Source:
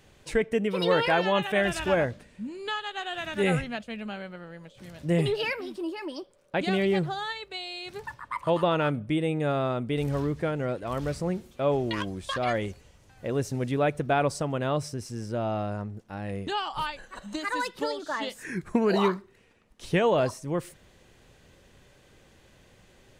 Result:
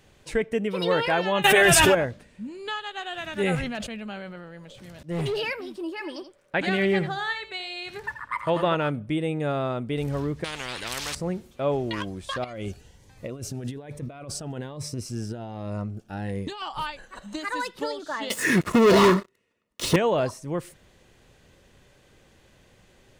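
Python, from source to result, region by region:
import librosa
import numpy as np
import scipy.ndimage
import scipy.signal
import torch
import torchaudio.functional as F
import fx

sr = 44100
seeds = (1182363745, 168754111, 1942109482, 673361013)

y = fx.chain(x, sr, fx.high_shelf(hz=7800.0, db=12.0),
    fx.comb(ms=7.4, depth=0.9),
    fx.env_flatten(amount_pct=100), at=(1.44, 1.95))
y = fx.chain(y, sr, fx.auto_swell(attack_ms=174.0),
    fx.clip_hard(threshold_db=-24.0),
    fx.sustainer(db_per_s=30.0), at=(3.55, 5.4))
y = fx.chain(y, sr, fx.peak_eq(hz=1800.0, db=7.5, octaves=0.91),
    fx.echo_single(ms=82, db=-11.0), at=(5.92, 8.75))
y = fx.chain(y, sr, fx.lowpass(hz=3600.0, slope=6),
    fx.spectral_comp(ratio=10.0), at=(10.44, 11.15))
y = fx.chain(y, sr, fx.over_compress(threshold_db=-33.0, ratio=-1.0),
    fx.notch_cascade(direction='rising', hz=1.2), at=(12.44, 16.62))
y = fx.chain(y, sr, fx.low_shelf(hz=170.0, db=-6.0),
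    fx.leveller(passes=5),
    fx.notch_comb(f0_hz=790.0), at=(18.3, 19.96))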